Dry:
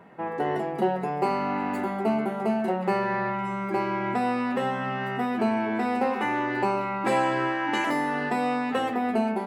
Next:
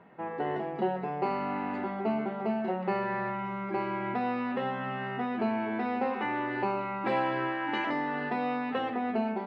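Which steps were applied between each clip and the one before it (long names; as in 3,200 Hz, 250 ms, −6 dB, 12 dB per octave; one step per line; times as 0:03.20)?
low-pass filter 4,100 Hz 24 dB per octave
level −5 dB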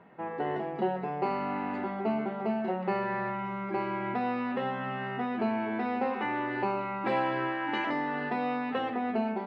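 no processing that can be heard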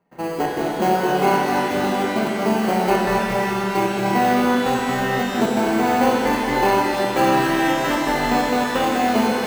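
in parallel at −8 dB: sample-rate reduction 1,800 Hz, jitter 0%
on the sum: gate pattern ".xxx.x.xxxxx.x" 132 BPM −24 dB
reverb with rising layers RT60 3.1 s, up +12 semitones, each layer −8 dB, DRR −2 dB
level +7.5 dB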